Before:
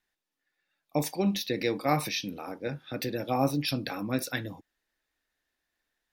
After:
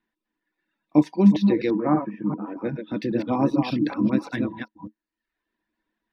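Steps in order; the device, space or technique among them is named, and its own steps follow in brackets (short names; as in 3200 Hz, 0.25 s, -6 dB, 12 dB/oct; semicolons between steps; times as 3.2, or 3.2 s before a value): reverse delay 0.195 s, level -4 dB; reverb removal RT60 0.73 s; inside a cardboard box (LPF 3200 Hz 12 dB/oct; small resonant body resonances 220/310/970 Hz, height 17 dB, ringing for 85 ms); 1.7–2.57 elliptic band-pass 120–1600 Hz, stop band 40 dB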